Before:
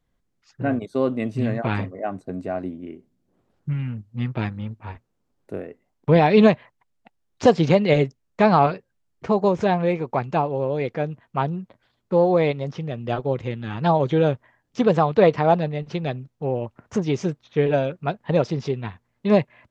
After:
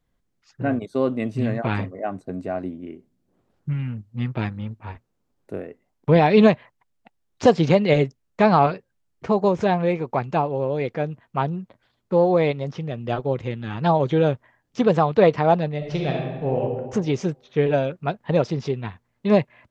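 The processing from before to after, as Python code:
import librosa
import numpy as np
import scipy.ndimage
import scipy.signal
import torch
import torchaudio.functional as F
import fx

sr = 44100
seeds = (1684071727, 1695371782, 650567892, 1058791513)

y = fx.reverb_throw(x, sr, start_s=15.77, length_s=0.84, rt60_s=1.3, drr_db=-1.0)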